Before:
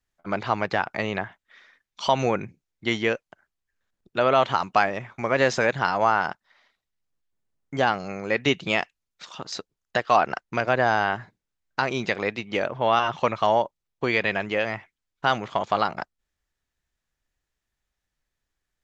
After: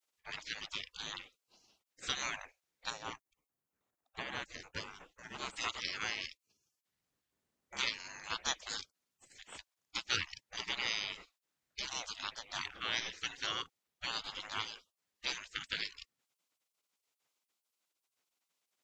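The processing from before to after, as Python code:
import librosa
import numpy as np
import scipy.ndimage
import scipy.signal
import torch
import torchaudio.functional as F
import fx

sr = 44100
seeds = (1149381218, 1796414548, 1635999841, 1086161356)

y = fx.spec_gate(x, sr, threshold_db=-25, keep='weak')
y = fx.peak_eq(y, sr, hz=3800.0, db=-12.0, octaves=2.4, at=(2.9, 5.56))
y = y * librosa.db_to_amplitude(4.0)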